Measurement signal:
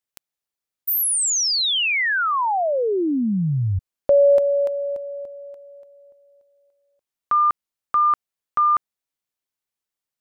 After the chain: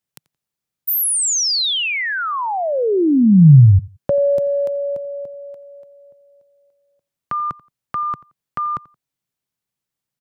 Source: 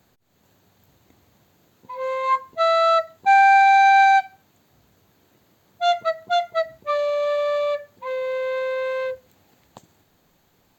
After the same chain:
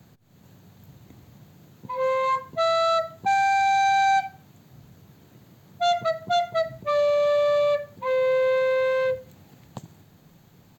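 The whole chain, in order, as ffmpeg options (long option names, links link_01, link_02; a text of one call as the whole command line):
ffmpeg -i in.wav -filter_complex "[0:a]equalizer=frequency=140:width=0.93:gain=13,acrossover=split=440|4100[link_01][link_02][link_03];[link_02]acompressor=threshold=-23dB:ratio=6:attack=1.5:release=74:knee=2.83:detection=peak[link_04];[link_01][link_04][link_03]amix=inputs=3:normalize=0,asplit=2[link_05][link_06];[link_06]adelay=87,lowpass=frequency=4600:poles=1,volume=-21dB,asplit=2[link_07][link_08];[link_08]adelay=87,lowpass=frequency=4600:poles=1,volume=0.23[link_09];[link_05][link_07][link_09]amix=inputs=3:normalize=0,volume=2.5dB" out.wav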